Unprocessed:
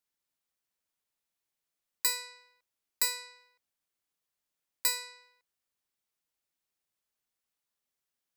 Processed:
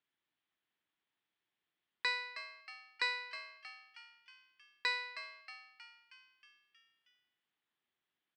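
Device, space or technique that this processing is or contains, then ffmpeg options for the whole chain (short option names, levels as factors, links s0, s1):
frequency-shifting delay pedal into a guitar cabinet: -filter_complex "[0:a]asplit=8[s0][s1][s2][s3][s4][s5][s6][s7];[s1]adelay=316,afreqshift=140,volume=0.266[s8];[s2]adelay=632,afreqshift=280,volume=0.157[s9];[s3]adelay=948,afreqshift=420,volume=0.0923[s10];[s4]adelay=1264,afreqshift=560,volume=0.055[s11];[s5]adelay=1580,afreqshift=700,volume=0.0324[s12];[s6]adelay=1896,afreqshift=840,volume=0.0191[s13];[s7]adelay=2212,afreqshift=980,volume=0.0112[s14];[s0][s8][s9][s10][s11][s12][s13][s14]amix=inputs=8:normalize=0,highpass=95,equalizer=f=330:t=q:w=4:g=5,equalizer=f=540:t=q:w=4:g=-6,equalizer=f=1800:t=q:w=4:g=4,equalizer=f=3300:t=q:w=4:g=5,lowpass=f=3500:w=0.5412,lowpass=f=3500:w=1.3066,volume=1.26"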